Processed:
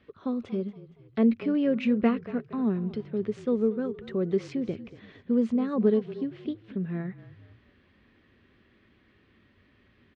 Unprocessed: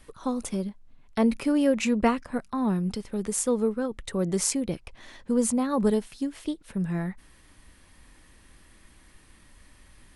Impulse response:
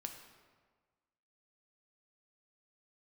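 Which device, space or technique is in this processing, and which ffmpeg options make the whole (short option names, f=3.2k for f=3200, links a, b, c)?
frequency-shifting delay pedal into a guitar cabinet: -filter_complex "[0:a]asplit=5[a][b][c][d][e];[b]adelay=233,afreqshift=-34,volume=-16dB[f];[c]adelay=466,afreqshift=-68,volume=-23.3dB[g];[d]adelay=699,afreqshift=-102,volume=-30.7dB[h];[e]adelay=932,afreqshift=-136,volume=-38dB[i];[a][f][g][h][i]amix=inputs=5:normalize=0,highpass=87,equalizer=f=100:t=q:w=4:g=7,equalizer=f=230:t=q:w=4:g=6,equalizer=f=400:t=q:w=4:g=9,equalizer=f=900:t=q:w=4:g=-8,lowpass=f=3.5k:w=0.5412,lowpass=f=3.5k:w=1.3066,volume=-5dB"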